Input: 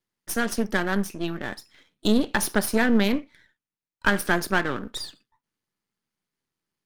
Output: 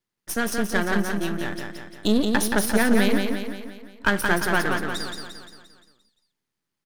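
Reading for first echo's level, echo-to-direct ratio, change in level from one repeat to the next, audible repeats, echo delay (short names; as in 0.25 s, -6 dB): -4.5 dB, -3.0 dB, -5.5 dB, 6, 0.174 s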